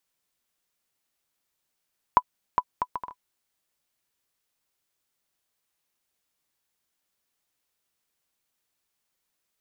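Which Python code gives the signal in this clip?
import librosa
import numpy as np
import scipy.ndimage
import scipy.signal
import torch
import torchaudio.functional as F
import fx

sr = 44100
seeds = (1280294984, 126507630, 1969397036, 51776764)

y = fx.bouncing_ball(sr, first_gap_s=0.41, ratio=0.58, hz=995.0, decay_ms=54.0, level_db=-5.0)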